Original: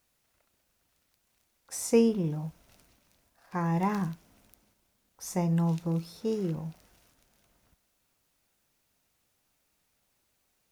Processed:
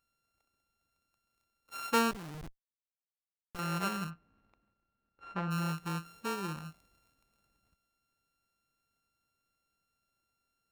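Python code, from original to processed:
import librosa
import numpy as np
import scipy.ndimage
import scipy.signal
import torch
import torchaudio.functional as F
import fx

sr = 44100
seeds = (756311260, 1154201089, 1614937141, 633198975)

y = np.r_[np.sort(x[:len(x) // 32 * 32].reshape(-1, 32), axis=1).ravel(), x[len(x) // 32 * 32:]]
y = fx.dynamic_eq(y, sr, hz=1400.0, q=0.74, threshold_db=-42.0, ratio=4.0, max_db=4)
y = fx.schmitt(y, sr, flips_db=-31.5, at=(2.11, 3.59))
y = fx.lowpass(y, sr, hz=2100.0, slope=12, at=(4.09, 5.5), fade=0.02)
y = F.gain(torch.from_numpy(y), -8.0).numpy()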